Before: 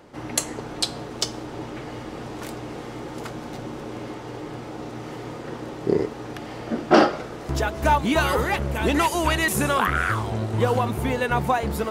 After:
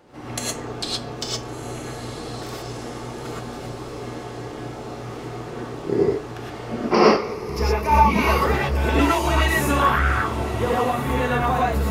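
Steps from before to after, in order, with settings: 6.82–8.32 s: rippled EQ curve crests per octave 0.85, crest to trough 13 dB; echo that smears into a reverb 1370 ms, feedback 42%, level -12.5 dB; gated-style reverb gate 140 ms rising, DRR -5.5 dB; dynamic bell 9.6 kHz, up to -6 dB, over -40 dBFS, Q 1.2; trim -5 dB

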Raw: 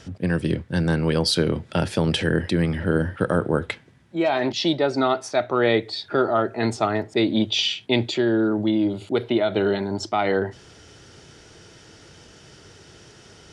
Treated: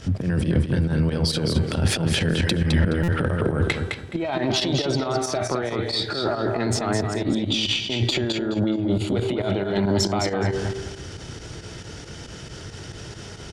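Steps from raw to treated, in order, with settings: de-hum 388.2 Hz, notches 32; compressor with a negative ratio -27 dBFS, ratio -1; bass shelf 140 Hz +9.5 dB; transient shaper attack 0 dB, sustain +6 dB; on a send: feedback delay 211 ms, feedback 23%, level -5.5 dB; on the sum: valve stage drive 10 dB, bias 0.45; volume shaper 137 bpm, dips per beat 2, -10 dB, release 60 ms; buffer glitch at 3.03 s, samples 256, times 8; trim +3 dB

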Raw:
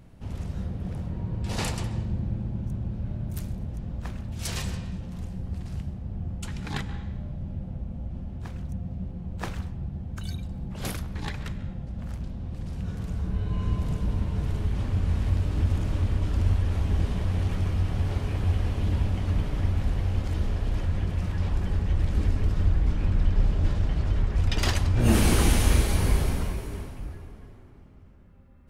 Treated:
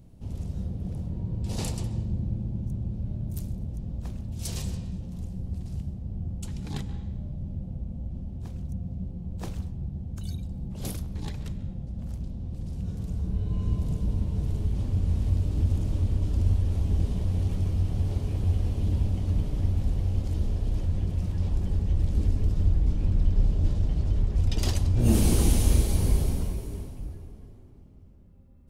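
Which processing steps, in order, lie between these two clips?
peaking EQ 1.6 kHz -13.5 dB 2 oct

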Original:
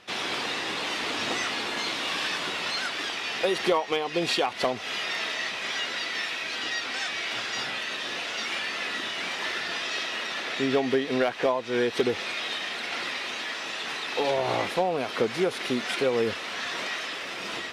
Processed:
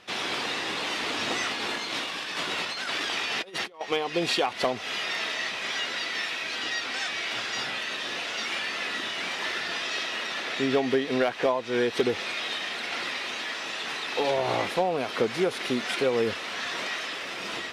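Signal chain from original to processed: 1.51–3.81 s: compressor with a negative ratio -32 dBFS, ratio -0.5

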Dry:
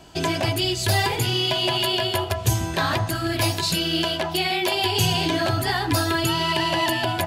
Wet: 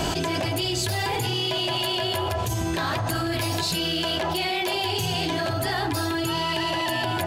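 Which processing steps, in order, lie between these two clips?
saturation -13.5 dBFS, distortion -21 dB; on a send: feedback echo behind a band-pass 67 ms, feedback 69%, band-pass 550 Hz, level -7.5 dB; on the sum: level flattener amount 100%; trim -7.5 dB

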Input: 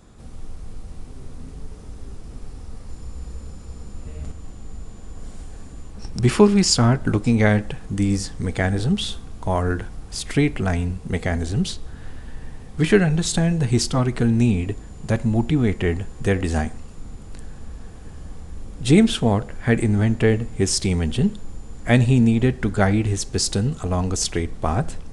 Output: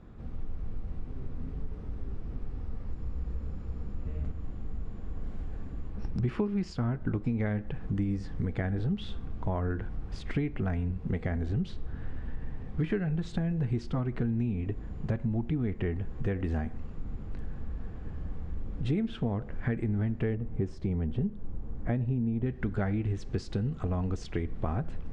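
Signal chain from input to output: peaking EQ 840 Hz -5 dB 2.1 oct; compression 6:1, threshold -27 dBFS, peak gain reduction 17 dB; low-pass 1.8 kHz 12 dB/octave, from 20.35 s 1.1 kHz, from 22.46 s 2 kHz

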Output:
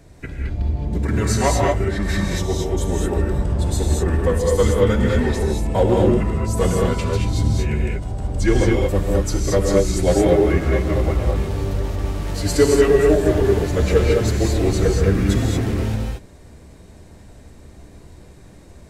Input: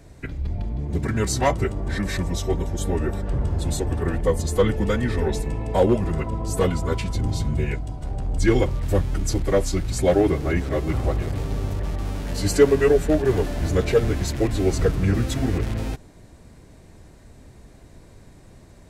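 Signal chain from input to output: gated-style reverb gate 250 ms rising, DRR -1 dB

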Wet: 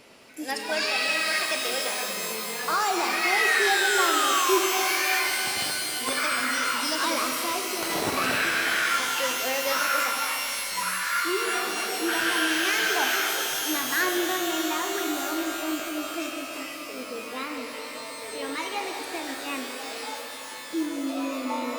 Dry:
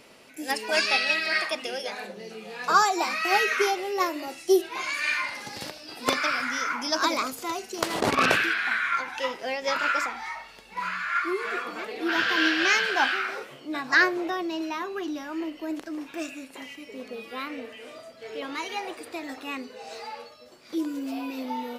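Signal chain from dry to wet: peak limiter -17.5 dBFS, peak gain reduction 9 dB; painted sound fall, 3.23–4.58 s, 1–2.2 kHz -27 dBFS; pitch-shifted reverb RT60 3.7 s, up +12 st, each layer -2 dB, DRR 4 dB

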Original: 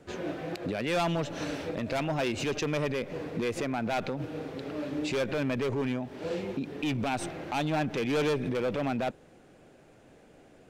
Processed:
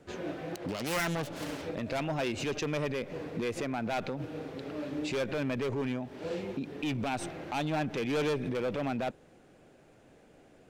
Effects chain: 0.55–1.62 s: self-modulated delay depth 0.3 ms; trim -2.5 dB

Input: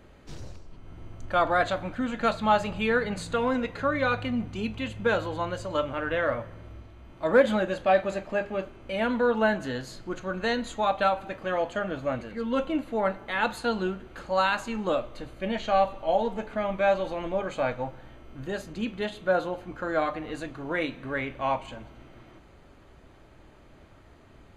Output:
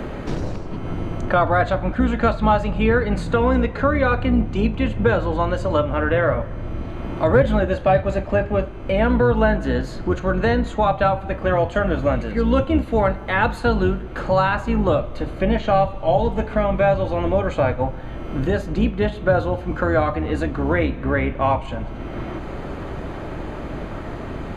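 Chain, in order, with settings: octave divider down 2 oct, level +2 dB; treble shelf 2.9 kHz -12 dB, from 11.73 s -6.5 dB, from 13.99 s -11.5 dB; three bands compressed up and down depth 70%; trim +8 dB

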